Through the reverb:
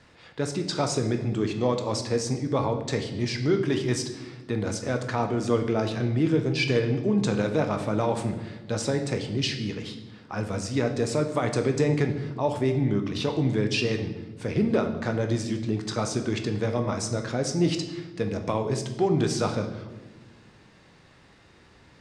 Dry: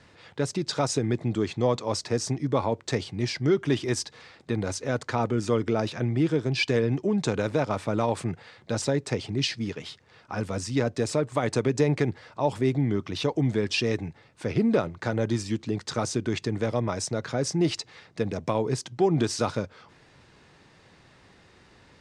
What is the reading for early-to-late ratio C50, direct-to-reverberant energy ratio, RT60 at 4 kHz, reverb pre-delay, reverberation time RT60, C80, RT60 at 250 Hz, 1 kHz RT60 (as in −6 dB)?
9.0 dB, 5.0 dB, 0.90 s, 15 ms, 1.2 s, 11.5 dB, 2.0 s, 1.0 s